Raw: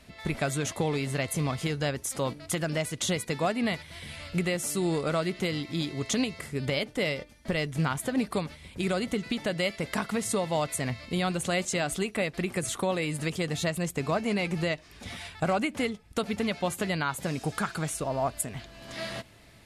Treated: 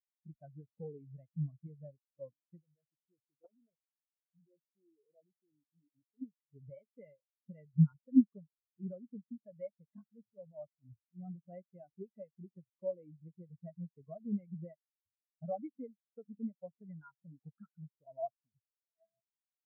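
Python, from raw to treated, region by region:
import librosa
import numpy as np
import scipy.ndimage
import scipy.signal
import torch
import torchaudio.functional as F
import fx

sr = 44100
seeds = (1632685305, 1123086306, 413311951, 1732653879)

y = fx.chain(x, sr, fx.level_steps(step_db=12),
    fx.filter_lfo_lowpass(shape='square', hz=1.4, low_hz=840.0, high_hz=3900.0, q=1.8),
    fx.doppler_dist(depth_ms=0.94), at=(2.59, 6.22))
y = fx.chain(y, sr, fx.lowpass(hz=3700.0, slope=12),
    fx.transient(attack_db=-11, sustain_db=3), at=(10.08, 11.38))
y = scipy.signal.sosfilt(scipy.signal.butter(2, 3200.0, 'lowpass', fs=sr, output='sos'), y)
y = fx.spectral_expand(y, sr, expansion=4.0)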